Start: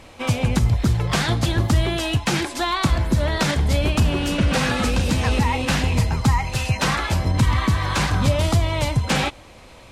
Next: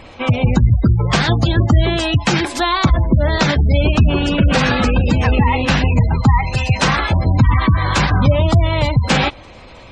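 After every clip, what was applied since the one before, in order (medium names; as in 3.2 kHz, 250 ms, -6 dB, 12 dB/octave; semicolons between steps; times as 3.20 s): spectral gate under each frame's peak -25 dB strong; trim +6 dB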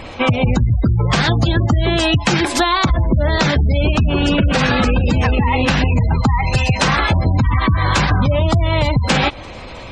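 peak limiter -6.5 dBFS, peak gain reduction 5 dB; compression, threshold -18 dBFS, peak gain reduction 8.5 dB; trim +6.5 dB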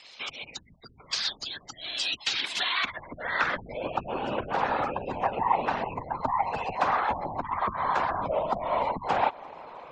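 band-pass sweep 4.9 kHz -> 850 Hz, 2.04–3.98 s; whisper effect; trim -2.5 dB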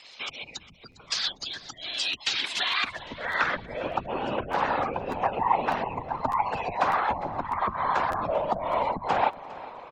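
feedback delay 405 ms, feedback 42%, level -18.5 dB; crackling interface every 0.60 s, samples 512, repeat, from 0.91 s; warped record 33 1/3 rpm, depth 100 cents; trim +1 dB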